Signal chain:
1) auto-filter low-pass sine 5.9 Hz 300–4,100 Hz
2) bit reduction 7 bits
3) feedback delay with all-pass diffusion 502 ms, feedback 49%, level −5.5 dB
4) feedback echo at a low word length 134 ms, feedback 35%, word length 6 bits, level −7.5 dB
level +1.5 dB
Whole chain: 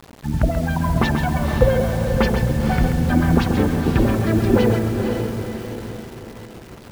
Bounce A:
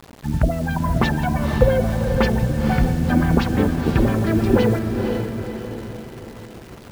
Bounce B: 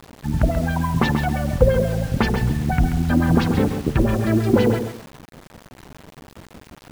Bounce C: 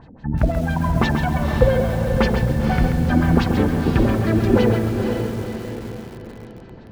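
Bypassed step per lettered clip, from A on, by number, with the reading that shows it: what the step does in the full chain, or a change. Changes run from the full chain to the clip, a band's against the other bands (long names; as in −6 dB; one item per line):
4, 8 kHz band −1.5 dB
3, change in momentary loudness spread −10 LU
2, distortion level −25 dB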